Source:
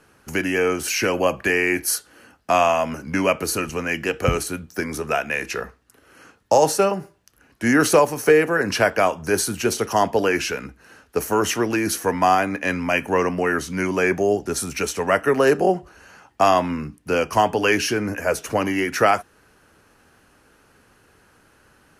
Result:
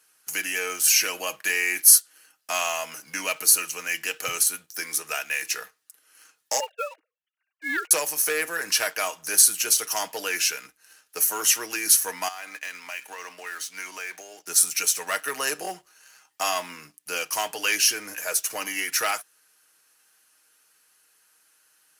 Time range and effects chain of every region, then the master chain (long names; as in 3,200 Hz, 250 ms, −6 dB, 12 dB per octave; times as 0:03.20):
0:06.60–0:07.91: three sine waves on the formant tracks + expander for the loud parts, over −36 dBFS
0:12.28–0:14.47: high-pass filter 670 Hz 6 dB per octave + high-shelf EQ 7,000 Hz −10.5 dB + downward compressor 12 to 1, threshold −24 dBFS
whole clip: comb filter 6.4 ms, depth 43%; leveller curve on the samples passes 1; first difference; level +3.5 dB